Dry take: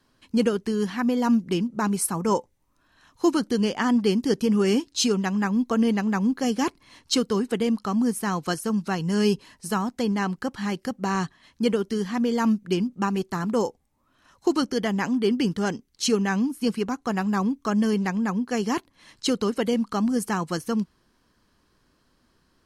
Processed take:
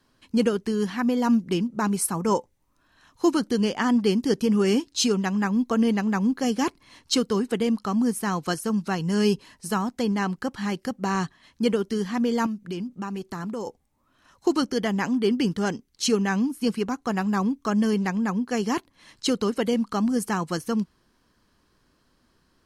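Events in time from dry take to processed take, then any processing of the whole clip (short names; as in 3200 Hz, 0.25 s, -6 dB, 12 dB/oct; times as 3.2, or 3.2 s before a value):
12.46–13.67 compressor 3:1, threshold -30 dBFS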